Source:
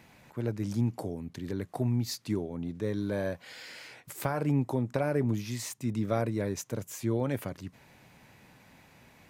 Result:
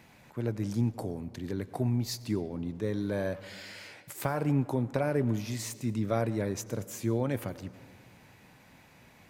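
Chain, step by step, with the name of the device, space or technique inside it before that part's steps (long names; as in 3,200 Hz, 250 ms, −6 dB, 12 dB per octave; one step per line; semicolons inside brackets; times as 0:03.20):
saturated reverb return (on a send at −13 dB: convolution reverb RT60 1.6 s, pre-delay 84 ms + soft clipping −30 dBFS, distortion −10 dB)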